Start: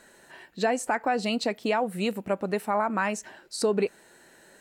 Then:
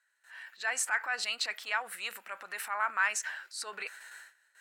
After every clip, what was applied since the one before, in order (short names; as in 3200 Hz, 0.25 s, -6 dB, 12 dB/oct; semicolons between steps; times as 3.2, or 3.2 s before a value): gate with hold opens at -44 dBFS; transient shaper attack -7 dB, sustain +7 dB; resonant high-pass 1500 Hz, resonance Q 2.1; gain -2.5 dB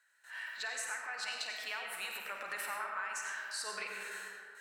compressor 12:1, threshold -41 dBFS, peak gain reduction 18 dB; flutter echo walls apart 8.8 m, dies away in 0.31 s; on a send at -1 dB: reverb RT60 2.1 s, pre-delay 50 ms; on the sum: gain +3 dB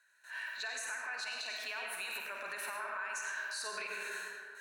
ripple EQ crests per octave 1.5, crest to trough 7 dB; limiter -31.5 dBFS, peak gain reduction 7.5 dB; gain +1 dB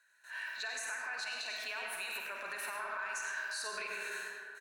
speakerphone echo 0.1 s, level -9 dB